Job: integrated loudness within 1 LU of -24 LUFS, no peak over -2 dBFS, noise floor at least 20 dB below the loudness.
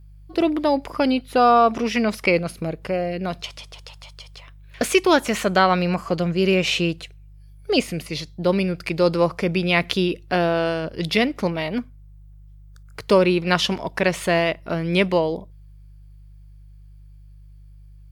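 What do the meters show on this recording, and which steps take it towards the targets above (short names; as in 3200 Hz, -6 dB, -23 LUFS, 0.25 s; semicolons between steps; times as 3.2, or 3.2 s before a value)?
hum 50 Hz; harmonics up to 150 Hz; hum level -42 dBFS; loudness -21.0 LUFS; peak -2.0 dBFS; loudness target -24.0 LUFS
-> de-hum 50 Hz, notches 3; gain -3 dB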